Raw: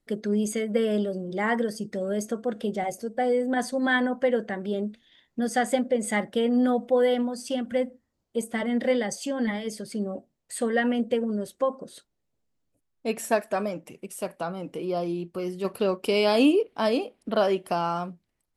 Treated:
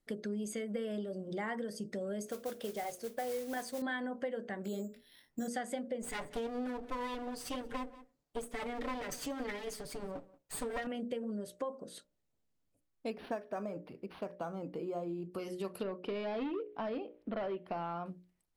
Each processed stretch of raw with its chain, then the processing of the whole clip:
0:02.26–0:03.82: parametric band 190 Hz −9 dB 0.91 octaves + noise that follows the level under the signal 14 dB
0:04.64–0:05.48: double-tracking delay 21 ms −5.5 dB + bad sample-rate conversion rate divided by 6×, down filtered, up hold
0:06.02–0:10.87: lower of the sound and its delayed copy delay 6.9 ms + single-tap delay 182 ms −22.5 dB
0:13.10–0:15.32: high-shelf EQ 2,900 Hz −9.5 dB + linearly interpolated sample-rate reduction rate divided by 6×
0:15.83–0:18.06: hard clipping −20.5 dBFS + high-frequency loss of the air 330 metres
whole clip: mains-hum notches 60/120/180/240/300/360/420/480/540/600 Hz; downward compressor 4 to 1, threshold −33 dBFS; level −3.5 dB

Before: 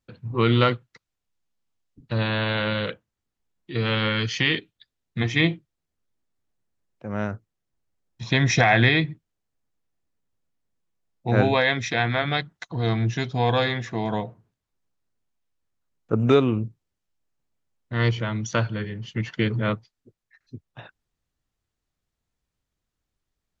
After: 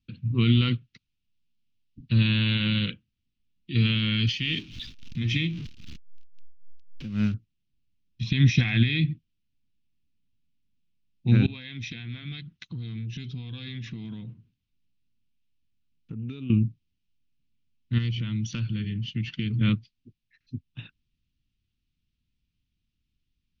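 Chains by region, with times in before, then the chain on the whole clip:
0:04.27–0:07.34: converter with a step at zero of −33 dBFS + amplitude tremolo 3.7 Hz, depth 71%
0:11.46–0:16.50: downward compressor 10 to 1, threshold −33 dBFS + saturating transformer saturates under 400 Hz
0:17.98–0:19.61: hard clipping −10.5 dBFS + downward compressor 3 to 1, threshold −30 dBFS
whole clip: flat-topped bell 3,900 Hz +15 dB; brickwall limiter −8 dBFS; drawn EQ curve 250 Hz 0 dB, 660 Hz −29 dB, 1,400 Hz −15 dB, 2,800 Hz −14 dB, 8,300 Hz −28 dB; level +5 dB

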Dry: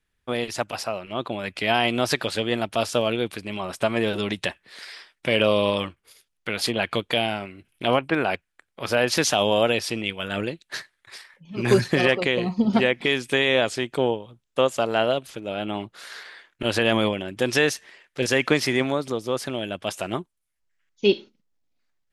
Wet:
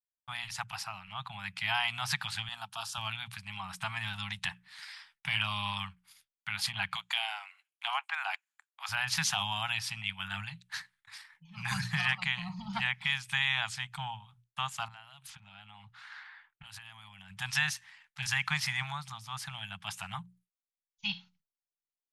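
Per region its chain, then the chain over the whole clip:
0:02.48–0:02.98: high-pass filter 410 Hz 6 dB per octave + parametric band 2,100 Hz −14 dB 0.55 octaves
0:06.95–0:08.89: Chebyshev high-pass filter 620 Hz, order 8 + parametric band 7,000 Hz +11 dB 0.21 octaves
0:14.88–0:17.30: low-pass that shuts in the quiet parts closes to 1,500 Hz, open at −21 dBFS + high-shelf EQ 7,900 Hz +11.5 dB + downward compressor 16 to 1, threshold −34 dBFS
whole clip: Chebyshev band-stop filter 180–810 Hz, order 4; mains-hum notches 60/120/180 Hz; downward expander −54 dBFS; level −6 dB

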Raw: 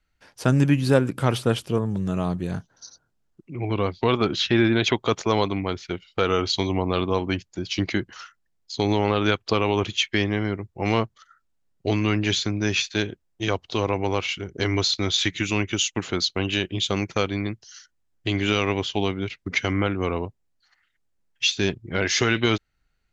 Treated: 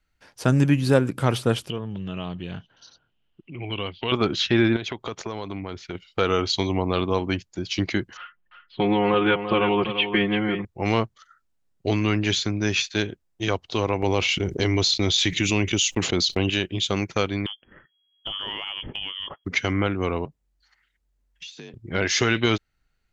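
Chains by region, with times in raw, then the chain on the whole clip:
0:01.70–0:04.12: downward compressor 1.5 to 1, threshold −39 dBFS + low-pass with resonance 3,000 Hz, resonance Q 8.8
0:04.76–0:05.95: high-shelf EQ 4,800 Hz −4.5 dB + downward compressor 4 to 1, threshold −28 dBFS
0:08.17–0:10.65: elliptic low-pass filter 3,100 Hz, stop band 60 dB + comb filter 5.6 ms, depth 86% + single-tap delay 341 ms −9.5 dB
0:14.02–0:16.50: noise gate −37 dBFS, range −11 dB + parametric band 1,400 Hz −7 dB 0.8 octaves + envelope flattener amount 70%
0:17.46–0:19.45: leveller curve on the samples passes 1 + voice inversion scrambler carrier 3,300 Hz + downward compressor 3 to 1, threshold −32 dBFS
0:20.25–0:21.74: downward compressor, threshold −38 dBFS + frequency shifter +46 Hz
whole clip: no processing

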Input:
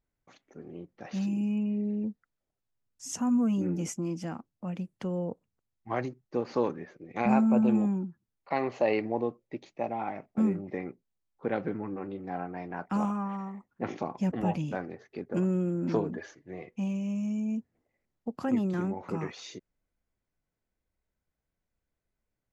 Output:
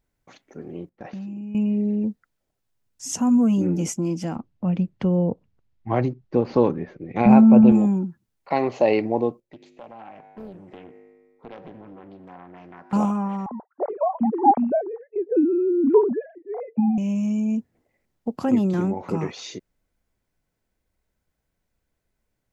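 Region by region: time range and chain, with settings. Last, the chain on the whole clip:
0:00.89–0:01.55: low-pass filter 1,700 Hz 6 dB per octave + noise gate −51 dBFS, range −10 dB + downward compressor 12 to 1, threshold −39 dBFS
0:04.36–0:07.72: low-pass filter 3,900 Hz + low-shelf EQ 180 Hz +10 dB
0:09.40–0:12.93: tuned comb filter 51 Hz, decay 1.7 s, harmonics odd, mix 70% + downward compressor 2 to 1, threshold −50 dBFS + highs frequency-modulated by the lows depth 0.88 ms
0:13.46–0:16.98: three sine waves on the formant tracks + low-pass with resonance 800 Hz, resonance Q 2.5
whole clip: notch filter 1,200 Hz, Q 23; dynamic equaliser 1,700 Hz, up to −6 dB, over −53 dBFS, Q 1.6; level +8 dB

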